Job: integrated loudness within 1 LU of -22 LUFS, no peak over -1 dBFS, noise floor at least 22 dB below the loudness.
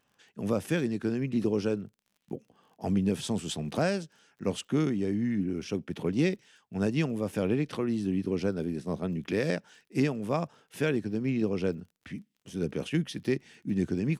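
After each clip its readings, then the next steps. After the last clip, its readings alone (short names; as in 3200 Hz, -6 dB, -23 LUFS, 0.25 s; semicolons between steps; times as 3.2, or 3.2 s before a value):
ticks 28/s; loudness -31.0 LUFS; peak -14.0 dBFS; loudness target -22.0 LUFS
-> de-click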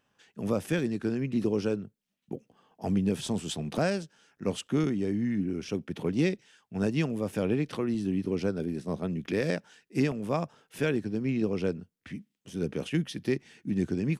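ticks 0.070/s; loudness -31.0 LUFS; peak -14.0 dBFS; loudness target -22.0 LUFS
-> gain +9 dB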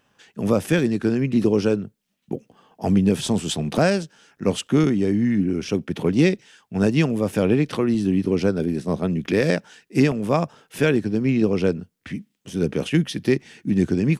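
loudness -22.0 LUFS; peak -5.0 dBFS; noise floor -72 dBFS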